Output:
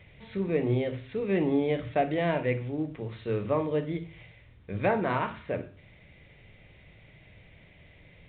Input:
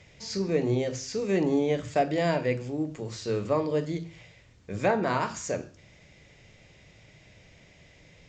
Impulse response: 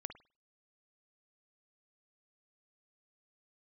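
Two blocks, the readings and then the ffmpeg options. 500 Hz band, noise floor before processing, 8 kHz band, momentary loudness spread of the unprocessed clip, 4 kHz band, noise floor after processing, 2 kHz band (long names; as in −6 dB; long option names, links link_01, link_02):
−1.5 dB, −57 dBFS, below −40 dB, 10 LU, −6.0 dB, −56 dBFS, −0.5 dB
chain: -filter_complex "[0:a]asplit=2[link_01][link_02];[link_02]equalizer=frequency=2200:width_type=o:width=0.44:gain=6[link_03];[1:a]atrim=start_sample=2205,lowshelf=frequency=140:gain=11[link_04];[link_03][link_04]afir=irnorm=-1:irlink=0,volume=-1dB[link_05];[link_01][link_05]amix=inputs=2:normalize=0,volume=-5.5dB" -ar 8000 -c:a pcm_mulaw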